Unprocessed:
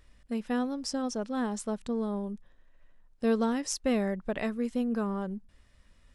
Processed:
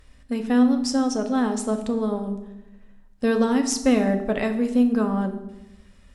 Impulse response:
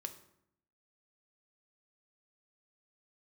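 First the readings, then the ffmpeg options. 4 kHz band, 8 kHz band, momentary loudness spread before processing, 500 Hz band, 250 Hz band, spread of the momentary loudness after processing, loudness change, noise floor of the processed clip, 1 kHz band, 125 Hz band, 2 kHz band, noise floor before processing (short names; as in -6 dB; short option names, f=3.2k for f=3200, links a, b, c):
+7.5 dB, +7.5 dB, 9 LU, +7.5 dB, +10.0 dB, 12 LU, +9.0 dB, -52 dBFS, +7.5 dB, n/a, +8.0 dB, -62 dBFS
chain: -filter_complex "[1:a]atrim=start_sample=2205,asetrate=31311,aresample=44100[a];[0:a][a]afir=irnorm=-1:irlink=0,volume=8.5dB"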